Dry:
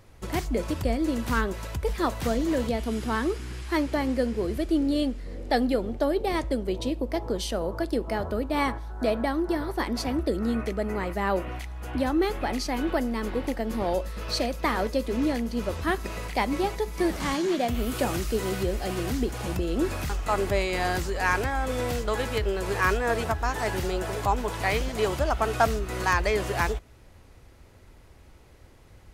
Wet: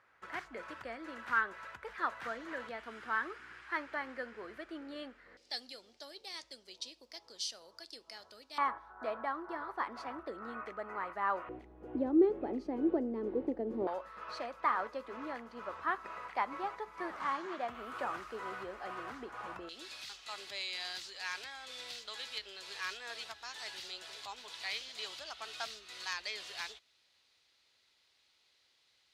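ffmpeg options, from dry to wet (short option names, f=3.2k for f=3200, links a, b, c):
-af "asetnsamples=n=441:p=0,asendcmd='5.37 bandpass f 5000;8.58 bandpass f 1200;11.49 bandpass f 370;13.87 bandpass f 1200;19.69 bandpass f 4000',bandpass=f=1.5k:t=q:w=2.7:csg=0"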